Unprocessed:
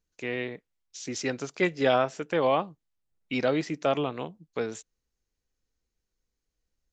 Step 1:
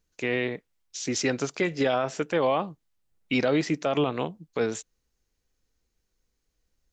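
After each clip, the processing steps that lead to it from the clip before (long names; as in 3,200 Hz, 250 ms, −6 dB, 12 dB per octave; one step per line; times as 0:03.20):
brickwall limiter −21 dBFS, peak gain reduction 9.5 dB
level +6 dB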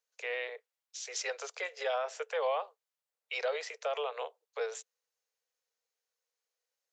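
Butterworth high-pass 440 Hz 96 dB per octave
level −7 dB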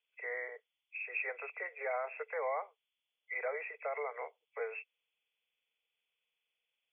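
hearing-aid frequency compression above 1,900 Hz 4 to 1
parametric band 530 Hz −3.5 dB 0.21 octaves
level −3 dB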